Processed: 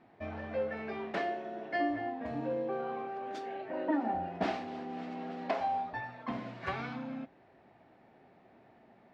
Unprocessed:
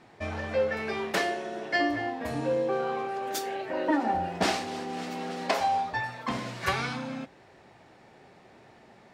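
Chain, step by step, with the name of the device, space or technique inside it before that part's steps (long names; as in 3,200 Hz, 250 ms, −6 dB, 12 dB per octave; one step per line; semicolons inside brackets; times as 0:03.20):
inside a cardboard box (low-pass filter 2,900 Hz 12 dB per octave; hollow resonant body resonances 250/670 Hz, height 6 dB, ringing for 20 ms)
level −9 dB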